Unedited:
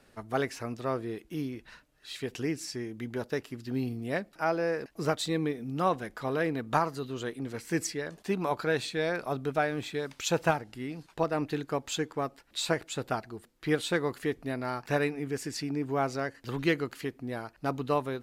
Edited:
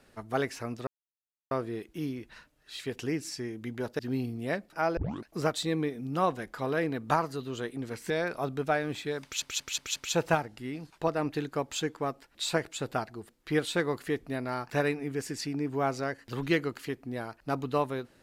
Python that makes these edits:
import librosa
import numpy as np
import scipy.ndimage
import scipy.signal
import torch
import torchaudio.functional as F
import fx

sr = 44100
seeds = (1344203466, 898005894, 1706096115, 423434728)

y = fx.edit(x, sr, fx.insert_silence(at_s=0.87, length_s=0.64),
    fx.cut(start_s=3.35, length_s=0.27),
    fx.tape_start(start_s=4.6, length_s=0.29),
    fx.cut(start_s=7.73, length_s=1.25),
    fx.stutter(start_s=10.12, slice_s=0.18, count=5), tone=tone)